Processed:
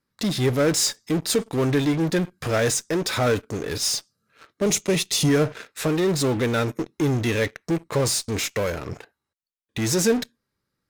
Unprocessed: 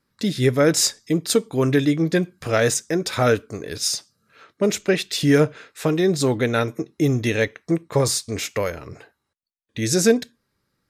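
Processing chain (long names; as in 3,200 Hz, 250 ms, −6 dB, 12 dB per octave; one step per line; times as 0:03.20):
in parallel at −8 dB: fuzz pedal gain 34 dB, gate −43 dBFS
0:04.66–0:05.29: on the sum: thirty-one-band graphic EQ 160 Hz +7 dB, 1,600 Hz −9 dB, 6,300 Hz +7 dB, 10,000 Hz +8 dB
level −6.5 dB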